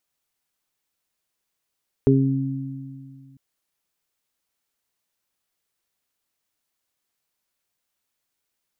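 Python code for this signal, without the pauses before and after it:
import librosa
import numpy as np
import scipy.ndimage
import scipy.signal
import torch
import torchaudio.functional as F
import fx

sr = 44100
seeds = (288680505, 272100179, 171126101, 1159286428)

y = fx.additive(sr, length_s=1.3, hz=135.0, level_db=-16.0, upper_db=(1.0, 2), decay_s=2.39, upper_decays_s=(2.1, 0.44))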